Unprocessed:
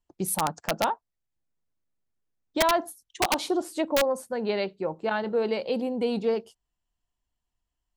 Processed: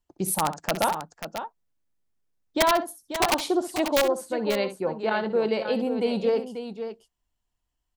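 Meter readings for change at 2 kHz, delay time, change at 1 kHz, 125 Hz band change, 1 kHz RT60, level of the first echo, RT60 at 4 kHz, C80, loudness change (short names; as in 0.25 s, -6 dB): +2.0 dB, 64 ms, +2.0 dB, +2.0 dB, none, -12.5 dB, none, none, +1.5 dB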